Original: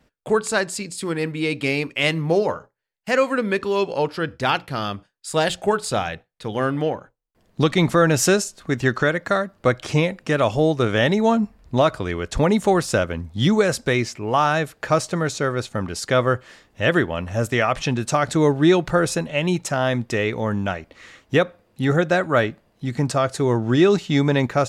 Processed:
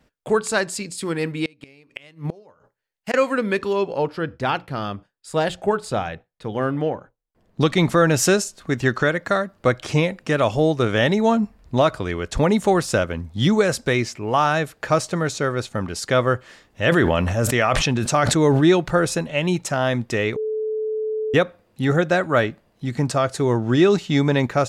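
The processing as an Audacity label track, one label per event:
1.450000	3.140000	inverted gate shuts at -14 dBFS, range -28 dB
3.730000	7.610000	treble shelf 2.2 kHz -8.5 dB
16.870000	18.660000	decay stretcher at most 22 dB/s
20.360000	21.340000	bleep 434 Hz -21.5 dBFS

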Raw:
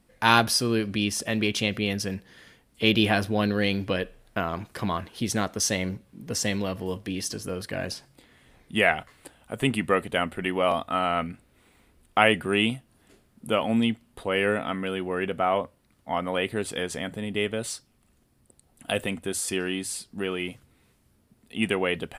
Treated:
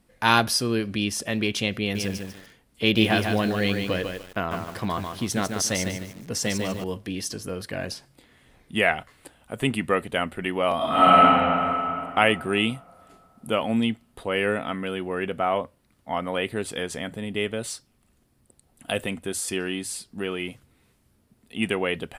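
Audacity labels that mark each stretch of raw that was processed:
1.800000	6.840000	bit-crushed delay 148 ms, feedback 35%, word length 7-bit, level -5 dB
10.760000	11.200000	reverb throw, RT60 2.9 s, DRR -10 dB

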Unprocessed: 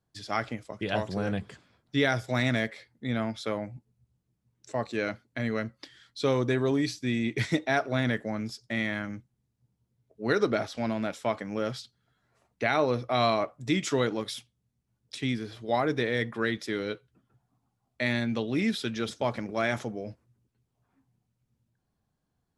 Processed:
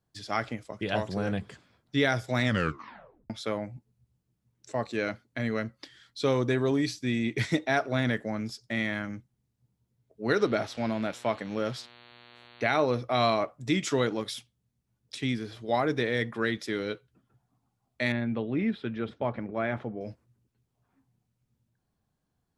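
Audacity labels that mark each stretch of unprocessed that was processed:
2.430000	2.430000	tape stop 0.87 s
10.310000	12.750000	mains buzz 120 Hz, harmonics 37, -54 dBFS -1 dB/octave
18.120000	20.010000	distance through air 500 m

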